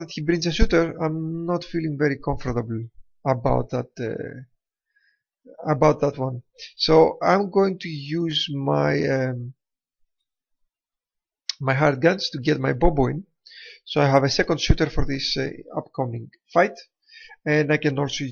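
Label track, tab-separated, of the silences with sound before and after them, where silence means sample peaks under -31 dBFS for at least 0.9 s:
4.390000	5.600000	silence
9.490000	11.490000	silence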